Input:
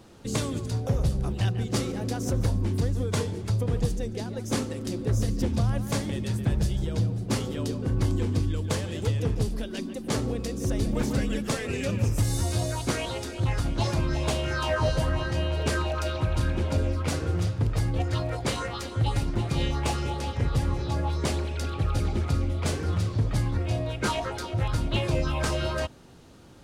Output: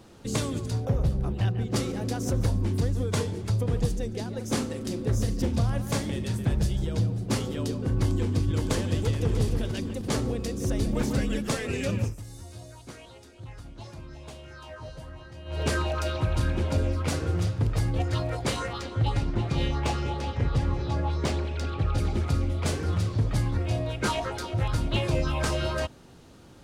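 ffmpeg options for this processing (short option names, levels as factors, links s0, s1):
-filter_complex "[0:a]asettb=1/sr,asplit=3[s0][s1][s2];[s0]atrim=end=0.854[s3];[s1]atrim=start=0.85:end=1.76,asetpts=PTS-STARTPTS,afade=t=in:d=0.004:c=qsin,afade=t=out:st=0.906:d=0.004:c=qsin,equalizer=f=8200:t=o:w=2.3:g=-9.5[s4];[s2]atrim=start=1.756[s5];[s3][s4]acrossfade=d=0.004:c1=hsin:c2=qsin[s6];[s6][s5]acrossfade=d=0.004:c1=qsin:c2=hsin,asettb=1/sr,asplit=3[s7][s8][s9];[s7]atrim=end=4.364[s10];[s8]atrim=start=4.36:end=6.54,asetpts=PTS-STARTPTS,afade=t=in:d=0.004:c=qsin,afade=t=out:st=2.176:d=0.004:c=qsin,asplit=2[s11][s12];[s12]adelay=41,volume=0.251[s13];[s11][s13]amix=inputs=2:normalize=0,atrim=end_sample=96138[s14];[s9]atrim=start=6.536[s15];[s10][s14]acrossfade=d=0.004:c1=hsin:c2=qsin[s16];[s16][s15]acrossfade=d=0.004:c1=qsin:c2=hsin,asplit=2[s17][s18];[s18]afade=t=in:st=7.92:d=0.01,afade=t=out:st=8.46:d=0.01,aecho=0:1:560|1120|1680|2240|2800|3360|3920|4480:0.707946|0.38937|0.214154|0.117784|0.0647815|0.0356298|0.0195964|0.010778[s19];[s17][s19]amix=inputs=2:normalize=0,asplit=2[s20][s21];[s21]afade=t=in:st=8.98:d=0.01,afade=t=out:st=9.41:d=0.01,aecho=0:1:300|600|900|1200:0.446684|0.156339|0.0547187|0.0191516[s22];[s20][s22]amix=inputs=2:normalize=0,asettb=1/sr,asplit=3[s23][s24][s25];[s23]atrim=end=18.734[s26];[s24]atrim=start=18.73:end=21.98,asetpts=PTS-STARTPTS,afade=t=in:d=0.004:c=qsin,afade=t=out:st=3.246:d=0.004:c=qsin,adynamicsmooth=sensitivity=4:basefreq=5900[s27];[s25]atrim=start=21.976[s28];[s26][s27]acrossfade=d=0.004:c1=hsin:c2=qsin[s29];[s29][s28]acrossfade=d=0.004:c1=qsin:c2=hsin,asplit=3[s30][s31][s32];[s30]atrim=end=12.16,asetpts=PTS-STARTPTS,afade=t=out:st=11.98:d=0.18:silence=0.149624[s33];[s31]atrim=start=12.16:end=15.45,asetpts=PTS-STARTPTS,volume=0.15[s34];[s32]atrim=start=15.45,asetpts=PTS-STARTPTS,afade=t=in:d=0.18:silence=0.149624[s35];[s33][s34][s35]concat=n=3:v=0:a=1"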